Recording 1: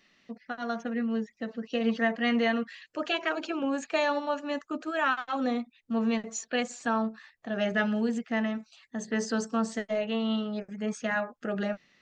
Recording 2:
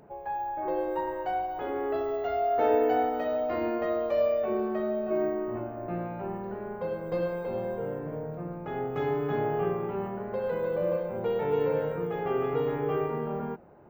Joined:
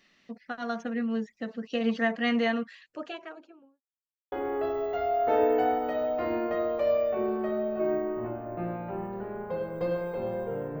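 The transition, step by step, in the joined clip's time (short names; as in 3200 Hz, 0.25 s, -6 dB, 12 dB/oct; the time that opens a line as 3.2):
recording 1
2.32–3.83 studio fade out
3.83–4.32 mute
4.32 switch to recording 2 from 1.63 s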